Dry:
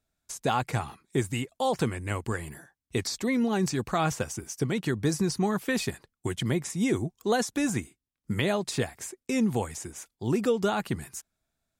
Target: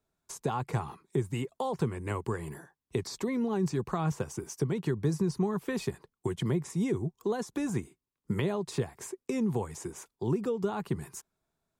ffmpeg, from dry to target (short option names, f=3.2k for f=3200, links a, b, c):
-filter_complex "[0:a]equalizer=f=160:t=o:w=0.67:g=7,equalizer=f=400:t=o:w=0.67:g=11,equalizer=f=1k:t=o:w=0.67:g=10,acrossover=split=180[a][b];[b]acompressor=threshold=-28dB:ratio=3[c];[a][c]amix=inputs=2:normalize=0,volume=-4.5dB"